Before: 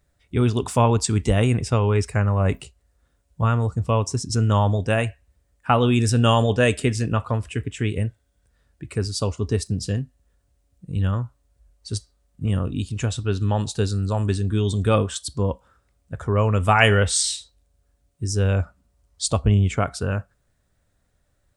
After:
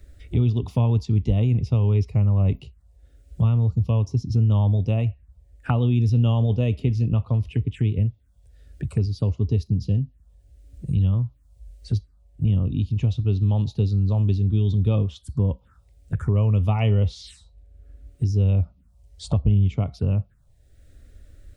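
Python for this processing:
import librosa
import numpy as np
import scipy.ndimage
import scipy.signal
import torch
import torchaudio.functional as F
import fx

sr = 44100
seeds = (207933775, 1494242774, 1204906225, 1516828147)

y = fx.bass_treble(x, sr, bass_db=11, treble_db=-5)
y = fx.env_phaser(y, sr, low_hz=150.0, high_hz=1600.0, full_db=-15.5)
y = fx.band_squash(y, sr, depth_pct=70)
y = F.gain(torch.from_numpy(y), -8.0).numpy()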